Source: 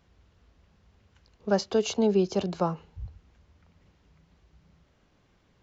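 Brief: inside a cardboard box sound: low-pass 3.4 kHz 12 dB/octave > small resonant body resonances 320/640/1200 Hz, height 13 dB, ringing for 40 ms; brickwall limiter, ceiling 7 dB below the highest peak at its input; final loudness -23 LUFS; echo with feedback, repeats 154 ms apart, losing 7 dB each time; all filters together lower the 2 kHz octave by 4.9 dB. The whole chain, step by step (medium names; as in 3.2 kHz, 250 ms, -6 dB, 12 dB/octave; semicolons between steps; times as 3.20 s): peaking EQ 2 kHz -6.5 dB; peak limiter -18.5 dBFS; low-pass 3.4 kHz 12 dB/octave; feedback delay 154 ms, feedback 45%, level -7 dB; small resonant body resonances 320/640/1200 Hz, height 13 dB, ringing for 40 ms; trim +2.5 dB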